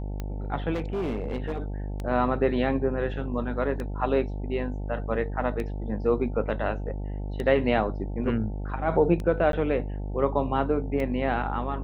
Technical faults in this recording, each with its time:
buzz 50 Hz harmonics 18 -32 dBFS
tick 33 1/3 rpm -20 dBFS
0.73–1.62 clipped -25 dBFS
9.52–9.53 gap 12 ms

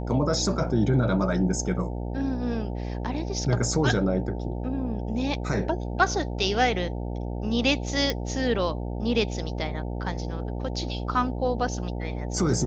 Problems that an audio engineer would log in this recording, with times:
buzz 60 Hz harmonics 15 -31 dBFS
8.1 pop

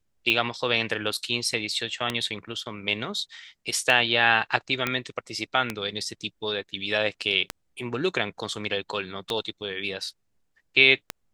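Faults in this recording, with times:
tick 33 1/3 rpm -10 dBFS
4.87 pop -10 dBFS

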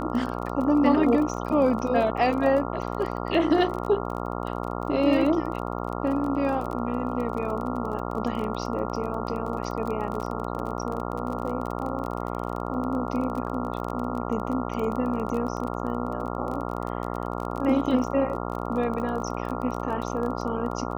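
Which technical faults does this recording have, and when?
buzz 60 Hz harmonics 23 -31 dBFS
crackle 26/s -31 dBFS

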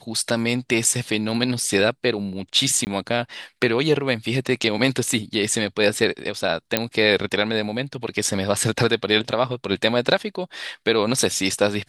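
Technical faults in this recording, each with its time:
2.85–2.87 gap 19 ms
6.77 pop -2 dBFS

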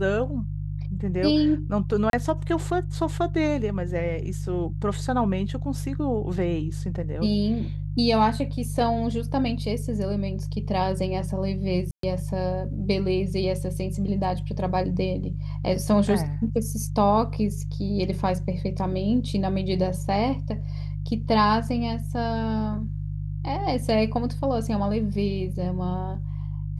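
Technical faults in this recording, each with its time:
hum 50 Hz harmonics 3 -30 dBFS
2.1–2.13 gap 32 ms
11.91–12.03 gap 0.123 s

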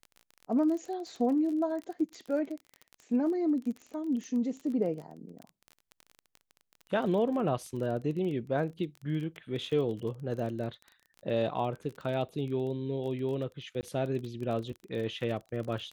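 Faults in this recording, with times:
crackle 23/s -37 dBFS
13.81–13.83 gap 19 ms

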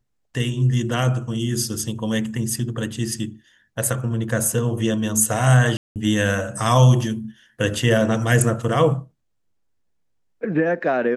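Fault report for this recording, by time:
5.77–5.96 gap 0.188 s

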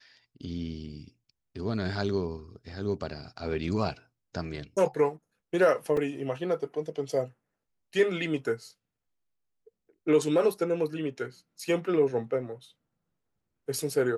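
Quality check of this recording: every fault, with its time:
5.97 gap 3.6 ms

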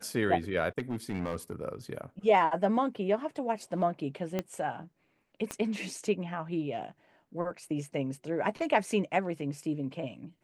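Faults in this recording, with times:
0.78–1.52 clipped -28 dBFS
4.39 pop -17 dBFS
5.51 pop -20 dBFS

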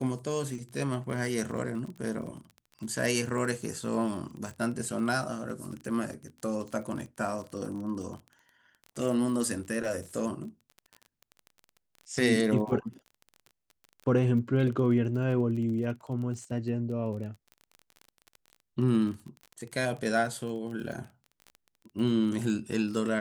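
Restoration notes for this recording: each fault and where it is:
crackle 27/s -37 dBFS

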